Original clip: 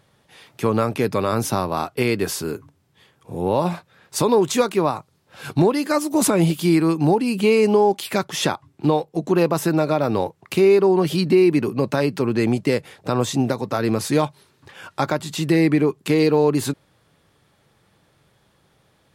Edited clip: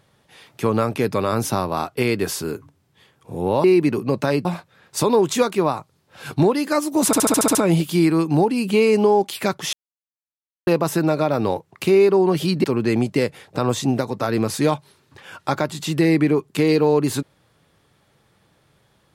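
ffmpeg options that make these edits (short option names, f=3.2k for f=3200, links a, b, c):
-filter_complex "[0:a]asplit=13[a][b][c][d][e][f][g][h][i][j][k][l][m];[a]atrim=end=3.642[n];[b]atrim=start=11.338:end=12.152[o];[c]atrim=start=3.638:end=6.322[p];[d]atrim=start=6.248:end=6.322[q];[e]atrim=start=6.248:end=6.322[r];[f]atrim=start=6.248:end=6.322[s];[g]atrim=start=6.248:end=6.322[t];[h]atrim=start=6.248:end=6.322[u];[i]atrim=start=6.248:end=6.322[v];[j]atrim=start=6.248:end=8.43,asetpts=PTS-STARTPTS,afade=t=out:st=2.178:d=0.004:c=hsin[w];[k]atrim=start=8.43:end=9.37,asetpts=PTS-STARTPTS,volume=0[x];[l]atrim=start=9.37:end=11.342,asetpts=PTS-STARTPTS,afade=t=in:d=0.004:c=hsin[y];[m]atrim=start=12.148[z];[n][o]acrossfade=d=0.004:c1=hsin:c2=hsin[aa];[aa][p]acrossfade=d=0.004:c1=hsin:c2=hsin[ab];[ab][q]acrossfade=d=0.004:c1=hsin:c2=hsin[ac];[ac][r]acrossfade=d=0.004:c1=hsin:c2=hsin[ad];[ad][s]acrossfade=d=0.004:c1=hsin:c2=hsin[ae];[ae][t]acrossfade=d=0.004:c1=hsin:c2=hsin[af];[af][u]acrossfade=d=0.004:c1=hsin:c2=hsin[ag];[ag][v]acrossfade=d=0.004:c1=hsin:c2=hsin[ah];[w][x][y]concat=n=3:v=0:a=1[ai];[ah][ai]acrossfade=d=0.004:c1=hsin:c2=hsin[aj];[aj][z]acrossfade=d=0.004:c1=hsin:c2=hsin"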